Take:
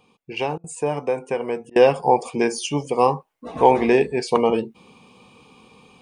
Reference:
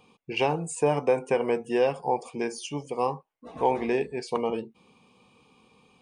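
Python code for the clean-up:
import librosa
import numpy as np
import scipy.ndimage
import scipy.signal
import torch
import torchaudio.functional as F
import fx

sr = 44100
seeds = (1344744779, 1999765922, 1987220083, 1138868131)

y = fx.fix_interpolate(x, sr, at_s=(0.58, 1.7), length_ms=58.0)
y = fx.gain(y, sr, db=fx.steps((0.0, 0.0), (1.71, -9.5)))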